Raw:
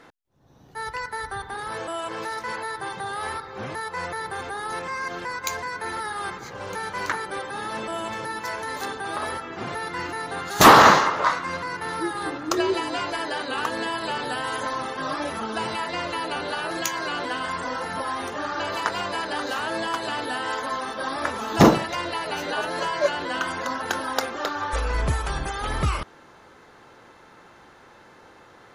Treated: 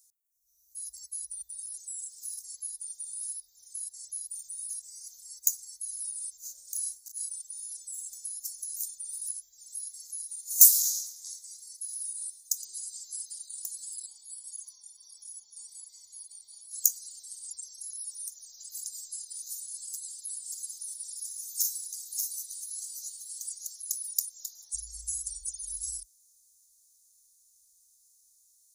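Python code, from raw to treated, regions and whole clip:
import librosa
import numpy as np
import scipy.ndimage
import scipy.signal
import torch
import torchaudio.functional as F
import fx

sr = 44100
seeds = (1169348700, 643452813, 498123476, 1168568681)

y = fx.chain(x, sr, fx.small_body(hz=(570.0, 1500.0), ring_ms=70, db=16),
    fx.over_compress(threshold_db=-29.0, ratio=-0.5),
    fx.doubler(ms=33.0, db=-3.5), at=(6.45, 7.31))
y = fx.chain(y, sr, fx.low_shelf(hz=490.0, db=-10.0),
    fx.echo_feedback(ms=115, feedback_pct=42, wet_db=-16.0), at=(9.68, 12.65))
y = fx.chain(y, sr, fx.highpass(hz=130.0, slope=12),
    fx.high_shelf(hz=3200.0, db=-10.5),
    fx.comb(ms=0.9, depth=0.82), at=(14.06, 16.73))
y = fx.chain(y, sr, fx.highpass(hz=1300.0, slope=6),
    fx.echo_single(ms=583, db=-4.5), at=(19.86, 23.83))
y = scipy.signal.sosfilt(scipy.signal.cheby2(4, 50, [120.0, 2900.0], 'bandstop', fs=sr, output='sos'), y)
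y = fx.tilt_eq(y, sr, slope=4.0)
y = y * librosa.db_to_amplitude(-2.5)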